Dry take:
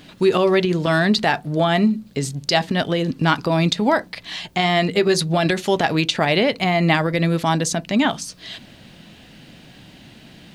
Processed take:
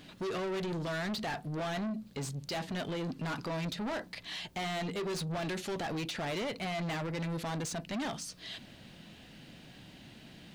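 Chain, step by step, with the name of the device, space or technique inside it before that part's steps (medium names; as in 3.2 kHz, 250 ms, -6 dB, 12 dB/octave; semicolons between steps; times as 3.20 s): saturation between pre-emphasis and de-emphasis (treble shelf 9 kHz +10 dB; saturation -25 dBFS, distortion -5 dB; treble shelf 9 kHz -10 dB); trim -8 dB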